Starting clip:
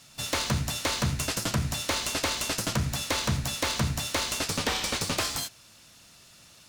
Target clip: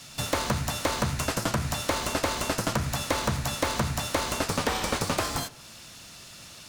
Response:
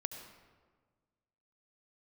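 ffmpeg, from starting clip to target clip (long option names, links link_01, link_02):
-filter_complex "[0:a]acrossover=split=610|1600|7800[link_01][link_02][link_03][link_04];[link_01]acompressor=threshold=-36dB:ratio=4[link_05];[link_02]acompressor=threshold=-37dB:ratio=4[link_06];[link_03]acompressor=threshold=-45dB:ratio=4[link_07];[link_04]acompressor=threshold=-46dB:ratio=4[link_08];[link_05][link_06][link_07][link_08]amix=inputs=4:normalize=0,asplit=2[link_09][link_10];[1:a]atrim=start_sample=2205,lowpass=8300[link_11];[link_10][link_11]afir=irnorm=-1:irlink=0,volume=-15dB[link_12];[link_09][link_12]amix=inputs=2:normalize=0,volume=7dB"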